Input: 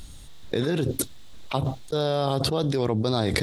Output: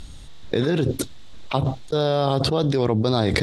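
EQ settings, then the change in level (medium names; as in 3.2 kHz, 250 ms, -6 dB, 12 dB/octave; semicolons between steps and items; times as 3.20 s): distance through air 52 m; +4.0 dB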